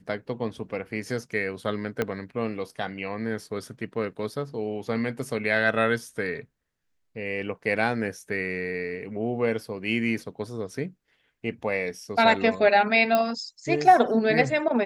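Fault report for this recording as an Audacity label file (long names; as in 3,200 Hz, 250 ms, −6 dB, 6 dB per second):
2.020000	2.020000	click −12 dBFS
13.150000	13.150000	click −10 dBFS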